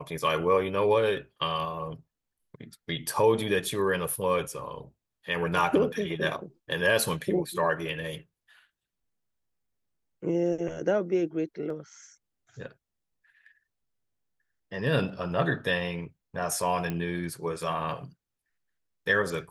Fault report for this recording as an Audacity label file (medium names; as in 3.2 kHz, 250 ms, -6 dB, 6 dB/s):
11.700000	11.700000	dropout 2.9 ms
16.900000	16.900000	pop -19 dBFS